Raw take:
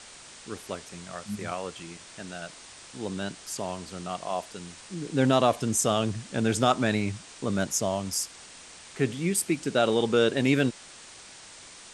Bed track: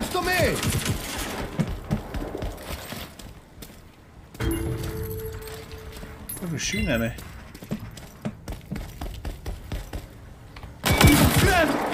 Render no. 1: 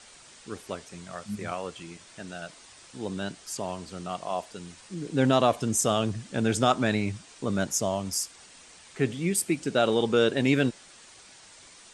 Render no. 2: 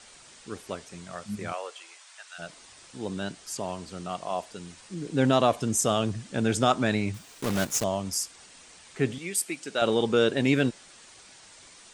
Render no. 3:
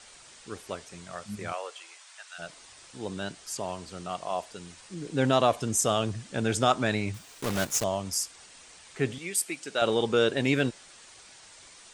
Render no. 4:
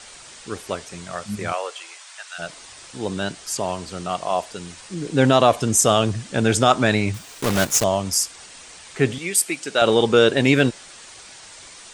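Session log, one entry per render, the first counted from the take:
broadband denoise 6 dB, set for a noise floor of −48 dBFS
0:01.52–0:02.38: high-pass filter 400 Hz → 1,100 Hz 24 dB per octave; 0:07.14–0:07.84: one scale factor per block 3 bits; 0:09.18–0:09.82: high-pass filter 860 Hz 6 dB per octave
parametric band 220 Hz −4 dB 1.4 octaves
level +9 dB; brickwall limiter −3 dBFS, peak gain reduction 2.5 dB

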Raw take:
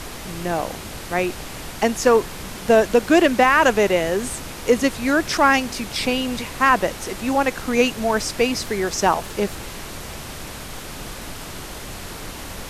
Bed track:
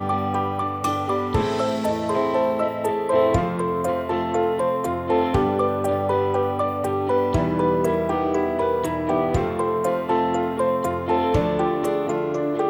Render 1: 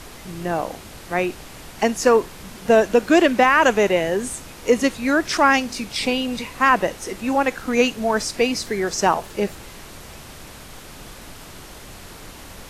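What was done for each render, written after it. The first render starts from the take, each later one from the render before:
noise reduction from a noise print 6 dB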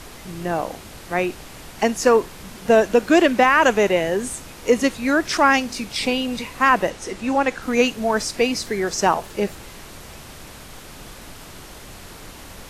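0:06.90–0:07.62: low-pass filter 9,000 Hz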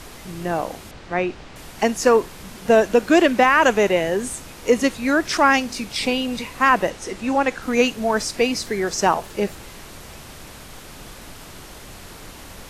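0:00.91–0:01.56: high-frequency loss of the air 120 metres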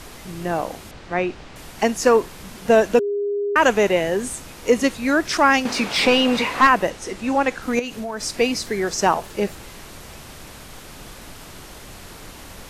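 0:02.99–0:03.56: beep over 407 Hz −20 dBFS
0:05.65–0:06.67: mid-hump overdrive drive 22 dB, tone 1,600 Hz, clips at −2.5 dBFS
0:07.79–0:08.23: downward compressor 4 to 1, threshold −26 dBFS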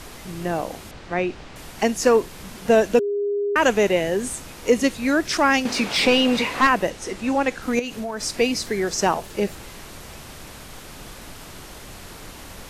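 dynamic equaliser 1,100 Hz, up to −4 dB, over −29 dBFS, Q 0.9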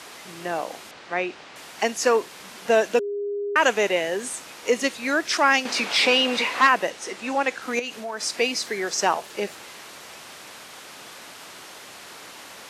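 meter weighting curve A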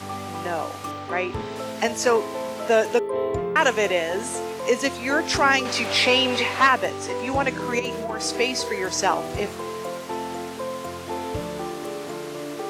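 mix in bed track −9.5 dB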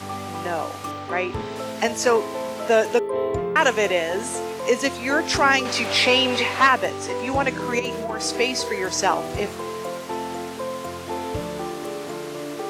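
level +1 dB

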